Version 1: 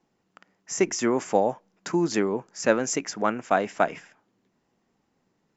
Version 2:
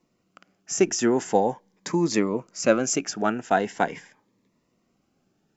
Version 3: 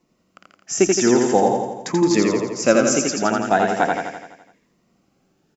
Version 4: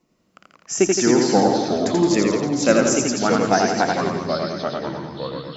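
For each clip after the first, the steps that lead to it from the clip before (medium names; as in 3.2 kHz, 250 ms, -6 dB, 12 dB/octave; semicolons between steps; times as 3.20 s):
Shepard-style phaser rising 0.43 Hz; trim +3 dB
feedback delay 84 ms, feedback 58%, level -3 dB; trim +3.5 dB
ever faster or slower copies 115 ms, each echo -3 st, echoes 3, each echo -6 dB; trim -1 dB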